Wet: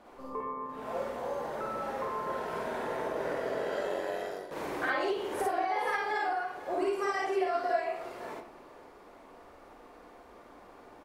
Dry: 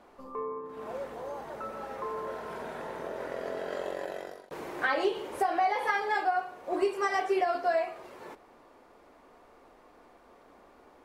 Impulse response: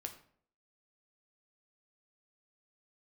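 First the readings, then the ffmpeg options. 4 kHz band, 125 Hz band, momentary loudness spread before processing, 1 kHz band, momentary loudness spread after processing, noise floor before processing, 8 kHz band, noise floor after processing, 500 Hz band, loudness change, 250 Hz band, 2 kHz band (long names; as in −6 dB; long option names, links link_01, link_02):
−1.0 dB, +3.0 dB, 13 LU, −1.5 dB, 22 LU, −58 dBFS, +1.0 dB, −54 dBFS, −0.5 dB, −1.0 dB, 0.0 dB, −1.5 dB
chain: -filter_complex "[0:a]acompressor=threshold=-31dB:ratio=6,aecho=1:1:496:0.126,asplit=2[link_01][link_02];[1:a]atrim=start_sample=2205,adelay=53[link_03];[link_02][link_03]afir=irnorm=-1:irlink=0,volume=4.5dB[link_04];[link_01][link_04]amix=inputs=2:normalize=0"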